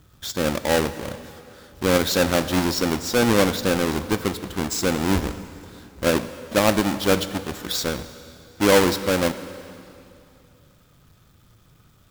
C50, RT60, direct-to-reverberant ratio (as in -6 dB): 12.5 dB, 2.7 s, 11.5 dB